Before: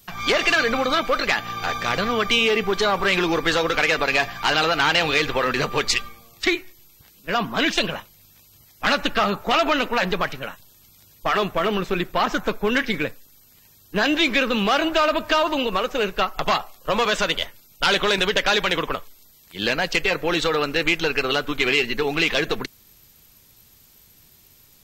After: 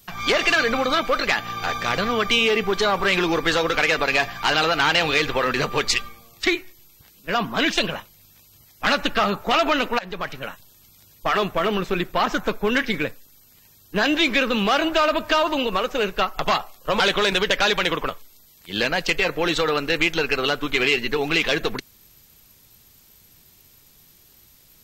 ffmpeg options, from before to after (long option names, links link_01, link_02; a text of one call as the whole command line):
ffmpeg -i in.wav -filter_complex "[0:a]asplit=3[link_01][link_02][link_03];[link_01]atrim=end=9.99,asetpts=PTS-STARTPTS,afade=type=out:start_time=9.986:duration=0.004:curve=hsin:silence=0.11885[link_04];[link_02]atrim=start=9.99:end=17.002,asetpts=PTS-STARTPTS,afade=type=in:duration=0.48:silence=0.11885[link_05];[link_03]atrim=start=17.858[link_06];[link_04][link_05]concat=n=2:v=0:a=1[link_07];[link_07][link_06]acrossfade=duration=0.004:curve1=hsin:curve2=hsin" out.wav